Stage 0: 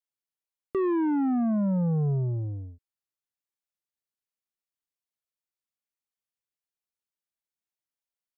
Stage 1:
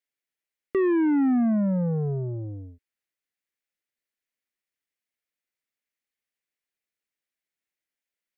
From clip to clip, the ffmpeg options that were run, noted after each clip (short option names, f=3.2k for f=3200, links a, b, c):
-af "equalizer=f=125:t=o:w=1:g=-4,equalizer=f=250:t=o:w=1:g=4,equalizer=f=500:t=o:w=1:g=4,equalizer=f=1k:t=o:w=1:g=-5,equalizer=f=2k:t=o:w=1:g=11"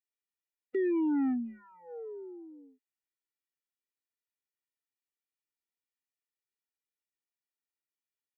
-af "afftfilt=real='re*eq(mod(floor(b*sr/1024/250),2),1)':imag='im*eq(mod(floor(b*sr/1024/250),2),1)':win_size=1024:overlap=0.75,volume=-7dB"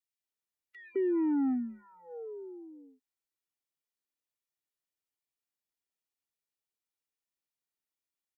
-filter_complex "[0:a]acrossover=split=1700[a][b];[a]adelay=210[c];[c][b]amix=inputs=2:normalize=0"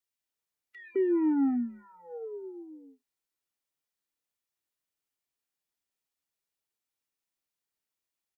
-filter_complex "[0:a]asplit=2[a][b];[b]adelay=29,volume=-13.5dB[c];[a][c]amix=inputs=2:normalize=0,volume=2.5dB"